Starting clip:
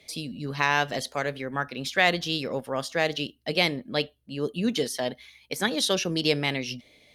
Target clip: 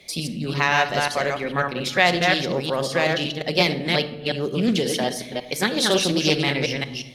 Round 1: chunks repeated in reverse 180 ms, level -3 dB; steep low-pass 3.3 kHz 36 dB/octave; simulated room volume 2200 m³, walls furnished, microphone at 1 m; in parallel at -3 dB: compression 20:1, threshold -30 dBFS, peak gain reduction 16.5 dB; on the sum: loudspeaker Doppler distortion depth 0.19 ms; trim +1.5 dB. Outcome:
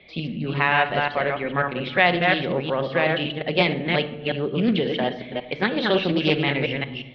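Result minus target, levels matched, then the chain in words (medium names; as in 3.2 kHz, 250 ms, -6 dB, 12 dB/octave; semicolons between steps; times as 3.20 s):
4 kHz band -3.5 dB
chunks repeated in reverse 180 ms, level -3 dB; simulated room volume 2200 m³, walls furnished, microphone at 1 m; in parallel at -3 dB: compression 20:1, threshold -30 dBFS, peak gain reduction 16.5 dB; on the sum: loudspeaker Doppler distortion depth 0.19 ms; trim +1.5 dB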